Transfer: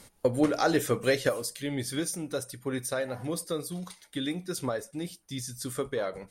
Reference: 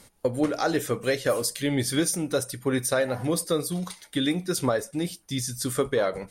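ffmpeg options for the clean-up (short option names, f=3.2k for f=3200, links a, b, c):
-af "asetnsamples=n=441:p=0,asendcmd='1.29 volume volume 7dB',volume=0dB"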